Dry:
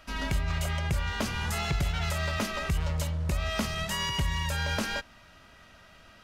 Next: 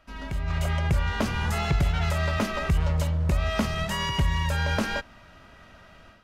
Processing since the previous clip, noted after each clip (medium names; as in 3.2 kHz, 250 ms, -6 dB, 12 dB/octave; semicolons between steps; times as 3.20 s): treble shelf 2.5 kHz -8.5 dB; level rider gain up to 10 dB; trim -4.5 dB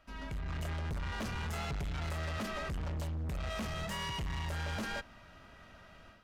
saturation -29.5 dBFS, distortion -8 dB; trim -5 dB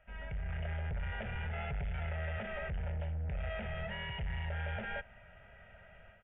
static phaser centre 1.1 kHz, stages 6; resampled via 8 kHz; trim +1 dB